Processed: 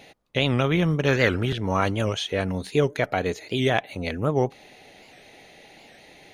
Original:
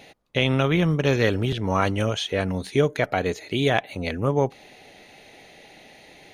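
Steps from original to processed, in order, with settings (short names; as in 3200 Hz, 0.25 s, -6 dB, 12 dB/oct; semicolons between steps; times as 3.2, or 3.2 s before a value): 1.08–1.56 bell 1500 Hz +9 dB 0.79 oct; record warp 78 rpm, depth 160 cents; gain -1 dB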